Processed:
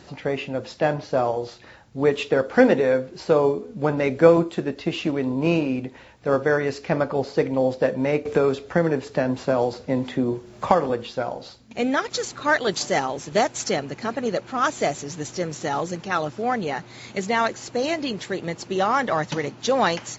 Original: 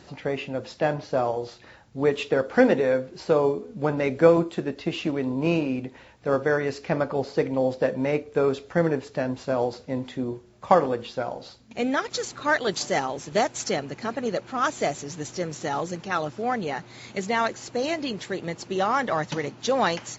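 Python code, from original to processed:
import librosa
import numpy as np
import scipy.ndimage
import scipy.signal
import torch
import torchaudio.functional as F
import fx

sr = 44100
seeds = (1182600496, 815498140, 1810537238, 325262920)

y = fx.band_squash(x, sr, depth_pct=70, at=(8.25, 10.9))
y = y * librosa.db_to_amplitude(2.5)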